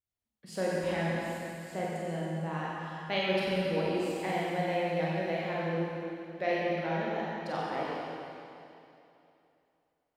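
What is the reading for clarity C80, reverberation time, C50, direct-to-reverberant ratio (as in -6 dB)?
-2.5 dB, 2.8 s, -3.5 dB, -6.5 dB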